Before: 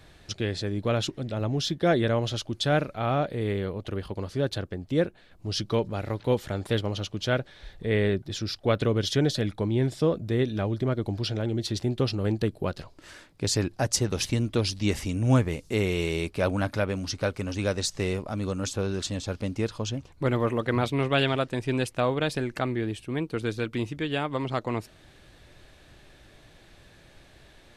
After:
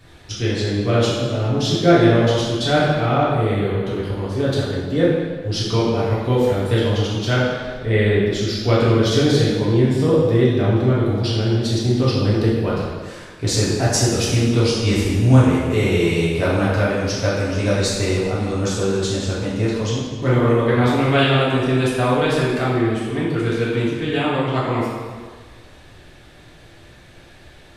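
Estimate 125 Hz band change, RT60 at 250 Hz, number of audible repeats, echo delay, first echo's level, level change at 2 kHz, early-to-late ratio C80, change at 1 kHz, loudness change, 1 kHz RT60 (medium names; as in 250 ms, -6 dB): +10.0 dB, 1.5 s, no echo, no echo, no echo, +8.5 dB, 1.0 dB, +9.0 dB, +9.5 dB, 1.6 s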